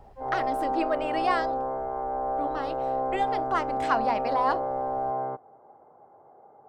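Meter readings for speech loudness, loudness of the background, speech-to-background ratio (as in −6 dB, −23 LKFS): −30.5 LKFS, −29.5 LKFS, −1.0 dB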